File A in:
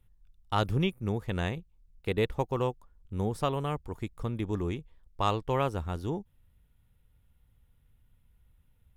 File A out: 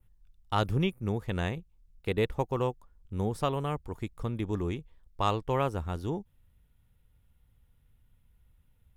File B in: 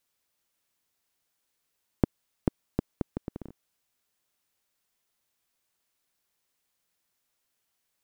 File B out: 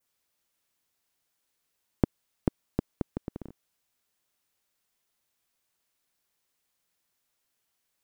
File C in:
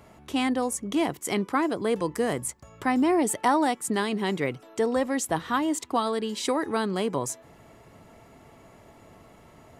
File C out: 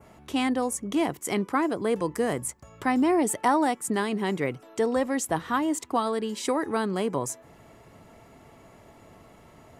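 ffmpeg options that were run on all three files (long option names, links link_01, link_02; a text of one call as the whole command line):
ffmpeg -i in.wav -af "adynamicequalizer=threshold=0.00355:dfrequency=3800:dqfactor=1.4:tfrequency=3800:tqfactor=1.4:attack=5:release=100:ratio=0.375:range=2.5:mode=cutabove:tftype=bell" out.wav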